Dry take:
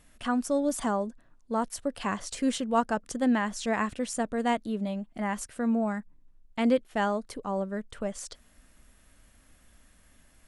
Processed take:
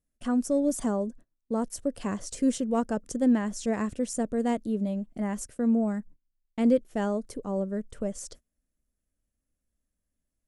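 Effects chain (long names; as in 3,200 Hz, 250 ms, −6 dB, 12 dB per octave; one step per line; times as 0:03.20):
in parallel at −8.5 dB: gain into a clipping stage and back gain 20.5 dB
on the sum: high-shelf EQ 7,100 Hz −4 dB
noise gate −45 dBFS, range −25 dB
flat-topped bell 1,800 Hz −10 dB 2.9 octaves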